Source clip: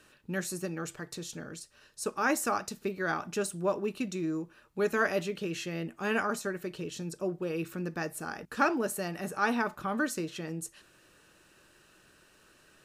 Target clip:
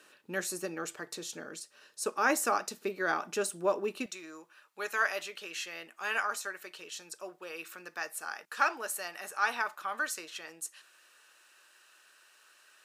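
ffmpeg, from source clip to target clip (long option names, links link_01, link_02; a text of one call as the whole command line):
ffmpeg -i in.wav -af "asetnsamples=nb_out_samples=441:pad=0,asendcmd='4.06 highpass f 930',highpass=340,volume=1.5dB" out.wav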